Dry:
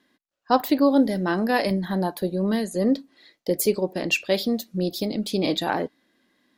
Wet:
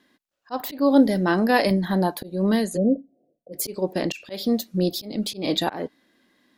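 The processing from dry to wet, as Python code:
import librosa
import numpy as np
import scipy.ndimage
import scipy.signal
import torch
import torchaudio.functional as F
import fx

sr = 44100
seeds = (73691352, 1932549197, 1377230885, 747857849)

y = fx.auto_swell(x, sr, attack_ms=226.0)
y = fx.cheby_ripple(y, sr, hz=740.0, ripple_db=6, at=(2.76, 3.52), fade=0.02)
y = y * librosa.db_to_amplitude(3.0)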